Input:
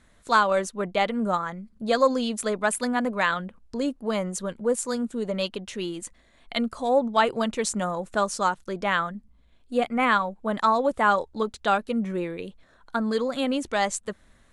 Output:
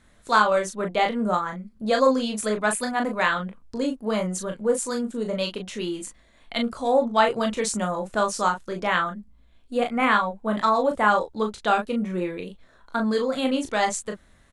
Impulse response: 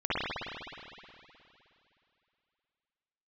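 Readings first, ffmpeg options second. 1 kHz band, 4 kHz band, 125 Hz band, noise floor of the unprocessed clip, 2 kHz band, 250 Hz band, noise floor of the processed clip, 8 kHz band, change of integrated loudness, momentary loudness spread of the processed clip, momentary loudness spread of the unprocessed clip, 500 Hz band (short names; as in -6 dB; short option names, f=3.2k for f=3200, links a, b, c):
+1.5 dB, +1.5 dB, +1.5 dB, -59 dBFS, +1.5 dB, +1.0 dB, -57 dBFS, +1.5 dB, +1.5 dB, 11 LU, 11 LU, +1.5 dB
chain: -af "aecho=1:1:23|38:0.376|0.501"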